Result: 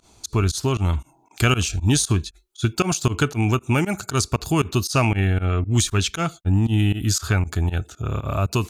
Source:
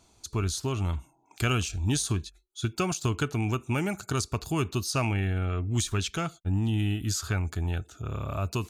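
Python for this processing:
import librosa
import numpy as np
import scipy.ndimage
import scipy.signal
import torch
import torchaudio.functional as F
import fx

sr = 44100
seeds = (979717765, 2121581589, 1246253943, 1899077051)

y = fx.volume_shaper(x, sr, bpm=117, per_beat=2, depth_db=-23, release_ms=85.0, shape='fast start')
y = F.gain(torch.from_numpy(y), 8.5).numpy()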